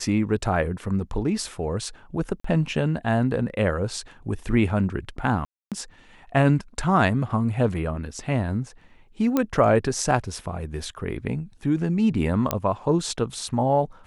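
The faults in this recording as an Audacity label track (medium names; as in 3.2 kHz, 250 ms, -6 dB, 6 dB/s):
2.400000	2.440000	dropout 44 ms
5.450000	5.720000	dropout 267 ms
9.370000	9.370000	pop -9 dBFS
12.510000	12.510000	pop -6 dBFS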